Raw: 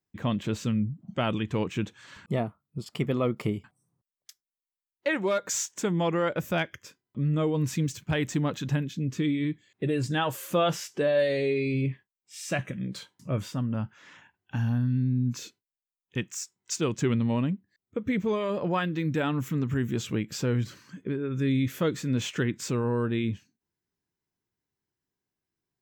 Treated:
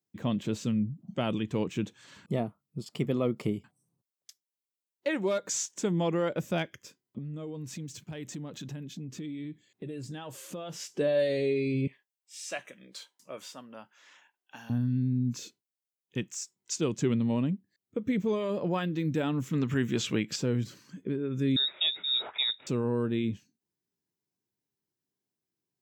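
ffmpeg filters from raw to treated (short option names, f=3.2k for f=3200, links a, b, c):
-filter_complex "[0:a]asettb=1/sr,asplit=3[a][b][c];[a]atrim=end=7.184[d];[b]atrim=start=7.18:end=10.8,asetpts=PTS-STARTPTS,afade=t=in:d=0.004:c=qsin,afade=t=out:st=3.616:d=0.004:c=qsin,acompressor=threshold=-36dB:ratio=4:attack=3.2:release=140:knee=1:detection=peak[e];[c]atrim=start=10.796[f];[d][e]acrossfade=d=0.004:c1=hsin:c2=qsin[g];[g][f]acrossfade=d=0.004:c1=qsin:c2=hsin,asettb=1/sr,asplit=3[h][i][j];[h]atrim=end=11.874[k];[i]atrim=start=11.87:end=14.7,asetpts=PTS-STARTPTS,afade=t=in:d=0.004:c=qsin,afade=t=out:st=2.826:d=0.004:c=qsin,highpass=660[l];[j]atrim=start=14.696[m];[k][l]acrossfade=d=0.004:c1=hsin:c2=qsin[n];[n][m]acrossfade=d=0.004:c1=qsin:c2=hsin,asettb=1/sr,asplit=3[o][p][q];[o]atrim=end=19.534[r];[p]atrim=start=19.53:end=20.36,asetpts=PTS-STARTPTS,afade=t=in:d=0.004:c=qsin,afade=t=out:st=0.826:d=0.004:c=qsin,equalizer=f=2.2k:w=0.34:g=9.5[s];[q]atrim=start=20.356[t];[r][s]acrossfade=d=0.004:c1=hsin:c2=qsin[u];[u][t]acrossfade=d=0.004:c1=qsin:c2=hsin,asettb=1/sr,asplit=3[v][w][x];[v]atrim=end=21.564[y];[w]atrim=start=21.56:end=22.67,asetpts=PTS-STARTPTS,afade=t=in:d=0.004:c=qsin,afade=t=out:st=1.106:d=0.004:c=qsin,lowpass=f=3.3k:t=q:w=0.5098,lowpass=f=3.3k:t=q:w=0.6013,lowpass=f=3.3k:t=q:w=0.9,lowpass=f=3.3k:t=q:w=2.563,afreqshift=-3900[z];[x]atrim=start=22.666[aa];[y][z]acrossfade=d=0.004:c1=hsin:c2=qsin[ab];[ab][aa]acrossfade=d=0.004:c1=qsin:c2=hsin,equalizer=f=1.5k:w=0.65:g=-7,acrossover=split=9500[ac][ad];[ad]acompressor=threshold=-59dB:ratio=4:attack=1:release=60[ae];[ac][ae]amix=inputs=2:normalize=0,highpass=130"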